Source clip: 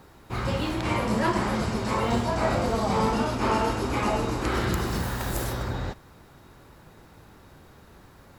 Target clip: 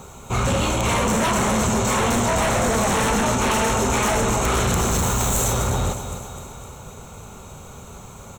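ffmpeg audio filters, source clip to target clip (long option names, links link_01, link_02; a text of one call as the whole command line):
ffmpeg -i in.wav -filter_complex "[0:a]superequalizer=6b=0.355:11b=0.282:15b=3.98,aecho=1:1:255|510|765|1020|1275|1530:0.251|0.138|0.076|0.0418|0.023|0.0126,asplit=2[link_01][link_02];[link_02]aeval=exprs='0.398*sin(PI/2*7.08*val(0)/0.398)':channel_layout=same,volume=-8.5dB[link_03];[link_01][link_03]amix=inputs=2:normalize=0,bandreject=frequency=4800:width=5.3,volume=-3dB" out.wav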